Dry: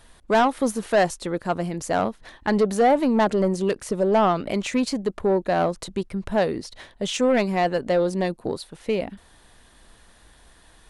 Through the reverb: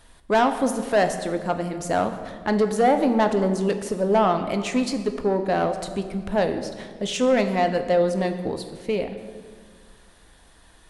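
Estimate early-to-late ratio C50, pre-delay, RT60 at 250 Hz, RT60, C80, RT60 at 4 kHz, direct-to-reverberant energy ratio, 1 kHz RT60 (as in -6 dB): 9.5 dB, 3 ms, 2.3 s, 1.8 s, 11.0 dB, 1.2 s, 7.0 dB, 1.7 s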